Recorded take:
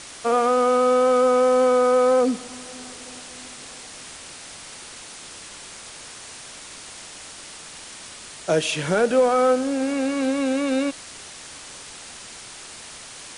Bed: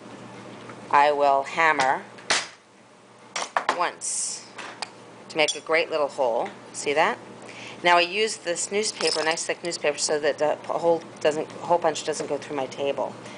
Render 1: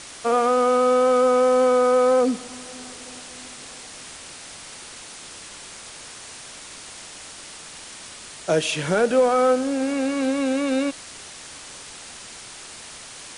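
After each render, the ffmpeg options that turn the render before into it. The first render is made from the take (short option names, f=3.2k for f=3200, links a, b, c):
-af anull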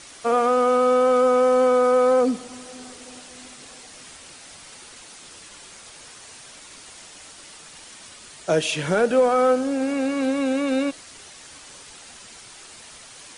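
-af "afftdn=nr=6:nf=-41"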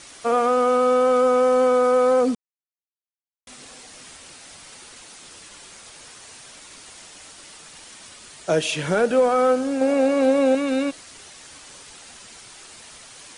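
-filter_complex "[0:a]asettb=1/sr,asplit=3[a][b][c];[a]atrim=end=9.814[d];[b]atrim=start=9.81:end=10.55,asetpts=PTS-STARTPTS,afade=t=in:d=0.004:c=qsin,afade=t=out:st=0.736:d=0.004:c=qsin,equalizer=f=620:w=1.4:g=11[e];[c]atrim=start=10.546[f];[d][e]acrossfade=d=0.004:c1=hsin:c2=qsin[g];[g][f]acrossfade=d=0.004:c1=qsin:c2=hsin,asplit=3[h][i][j];[h]atrim=end=2.35,asetpts=PTS-STARTPTS,afade=t=out:st=2.346:d=0.004:c=hsin[k];[i]atrim=start=2.35:end=3.47,asetpts=PTS-STARTPTS,volume=0[l];[j]atrim=start=3.47,asetpts=PTS-STARTPTS,afade=t=in:d=0.004:c=hsin[m];[k][l][m]concat=n=3:v=0:a=1"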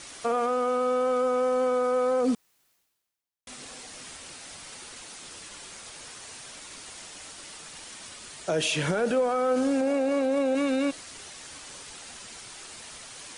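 -af "alimiter=limit=-17.5dB:level=0:latency=1:release=27,areverse,acompressor=mode=upward:threshold=-45dB:ratio=2.5,areverse"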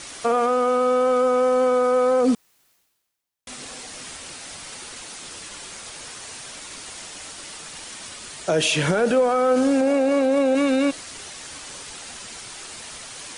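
-af "volume=6dB"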